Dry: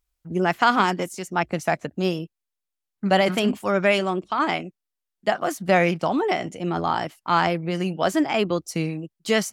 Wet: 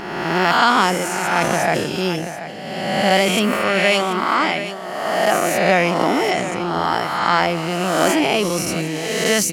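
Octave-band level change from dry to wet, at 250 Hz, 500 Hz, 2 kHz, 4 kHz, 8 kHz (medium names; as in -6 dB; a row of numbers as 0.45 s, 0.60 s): +3.5 dB, +4.5 dB, +7.0 dB, +8.5 dB, +12.5 dB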